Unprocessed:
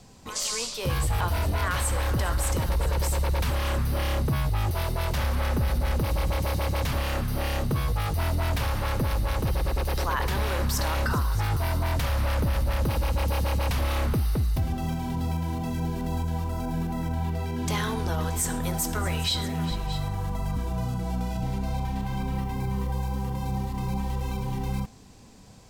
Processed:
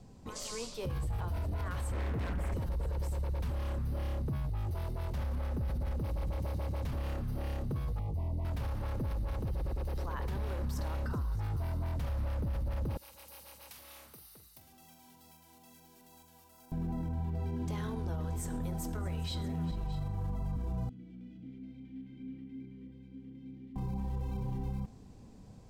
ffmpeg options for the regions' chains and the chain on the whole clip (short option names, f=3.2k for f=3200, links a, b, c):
-filter_complex "[0:a]asettb=1/sr,asplit=3[a][b][c];[a]atrim=end=1.924[d];[b]atrim=start=1.92:end=2.54,asetpts=PTS-STARTPTS,afade=t=in:d=0.004:c=qsin,afade=t=out:st=0.616:d=0.004:c=qsin,highpass=f=49:w=0.5412,highpass=f=49:w=1.3066,highshelf=f=2.9k:t=q:w=3:g=-9,aeval=exprs='0.0631*(abs(mod(val(0)/0.0631+3,4)-2)-1)':c=same[e];[c]atrim=start=2.536[f];[d][e]acrossfade=d=0.004:c1=hsin:c2=qsin[g];[g][f]acrossfade=d=0.004:c1=qsin:c2=hsin,asettb=1/sr,asplit=3[h][i][j];[h]atrim=end=7.994[k];[i]atrim=start=7.99:end=8.45,asetpts=PTS-STARTPTS,afade=t=in:d=0.004:c=qsin,afade=t=out:st=0.456:d=0.004:c=qsin,asuperstop=centerf=1500:order=20:qfactor=2,acrossover=split=390|1200[l][m][n];[l]acompressor=threshold=-26dB:ratio=4[o];[m]acompressor=threshold=-39dB:ratio=4[p];[n]acompressor=threshold=-52dB:ratio=4[q];[o][p][q]amix=inputs=3:normalize=0[r];[j]atrim=start=8.446[s];[k][r]acrossfade=d=0.004:c1=hsin:c2=qsin[t];[t][s]acrossfade=d=0.004:c1=qsin:c2=hsin,asettb=1/sr,asplit=3[u][v][w];[u]atrim=end=12.974[x];[v]atrim=start=12.97:end=16.72,asetpts=PTS-STARTPTS,afade=t=in:d=0.004:c=qsin,afade=t=out:st=3.746:d=0.004:c=qsin,aderivative,asplit=2[y][z];[z]adelay=45,volume=-10dB[aa];[y][aa]amix=inputs=2:normalize=0,atrim=end_sample=165375[ab];[w]atrim=start=16.716[ac];[x][ab]acrossfade=d=0.004:c1=hsin:c2=qsin[ad];[ad][ac]acrossfade=d=0.004:c1=qsin:c2=hsin,asettb=1/sr,asplit=3[ae][af][ag];[ae]atrim=end=20.894[ah];[af]atrim=start=20.89:end=23.76,asetpts=PTS-STARTPTS,afade=t=in:d=0.004:c=qsin,afade=t=out:st=2.866:d=0.004:c=qsin,asplit=3[ai][aj][ak];[ai]bandpass=f=270:t=q:w=8,volume=0dB[al];[aj]bandpass=f=2.29k:t=q:w=8,volume=-6dB[am];[ak]bandpass=f=3.01k:t=q:w=8,volume=-9dB[an];[al][am][an]amix=inputs=3:normalize=0,bandreject=f=50:t=h:w=6,bandreject=f=100:t=h:w=6,bandreject=f=150:t=h:w=6,bandreject=f=200:t=h:w=6,bandreject=f=250:t=h:w=6,bandreject=f=300:t=h:w=6,bandreject=f=350:t=h:w=6[ao];[ag]atrim=start=23.756[ap];[ah][ao]acrossfade=d=0.004:c1=hsin:c2=qsin[aq];[aq][ap]acrossfade=d=0.004:c1=qsin:c2=hsin,tiltshelf=f=820:g=6.5,alimiter=limit=-21.5dB:level=0:latency=1,volume=-7.5dB"